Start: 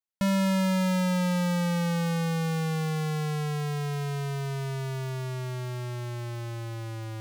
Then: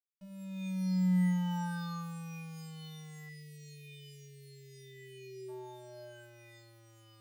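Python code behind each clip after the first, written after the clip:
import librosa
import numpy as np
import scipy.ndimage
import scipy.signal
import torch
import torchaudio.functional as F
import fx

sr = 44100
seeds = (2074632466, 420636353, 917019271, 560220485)

y = fx.fade_in_head(x, sr, length_s=1.14)
y = fx.spec_erase(y, sr, start_s=3.29, length_s=2.19, low_hz=470.0, high_hz=1700.0)
y = fx.stiff_resonator(y, sr, f0_hz=180.0, decay_s=0.38, stiffness=0.03)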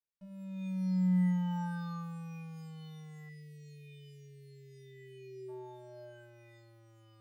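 y = fx.high_shelf(x, sr, hz=2500.0, db=-11.5)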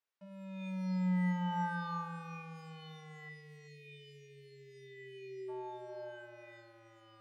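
y = fx.bandpass_q(x, sr, hz=1300.0, q=0.51)
y = y + 10.0 ** (-13.5 / 20.0) * np.pad(y, (int(383 * sr / 1000.0), 0))[:len(y)]
y = F.gain(torch.from_numpy(y), 7.5).numpy()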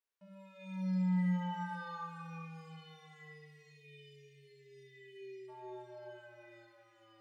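y = fx.rev_schroeder(x, sr, rt60_s=0.58, comb_ms=33, drr_db=2.0)
y = F.gain(torch.from_numpy(y), -5.0).numpy()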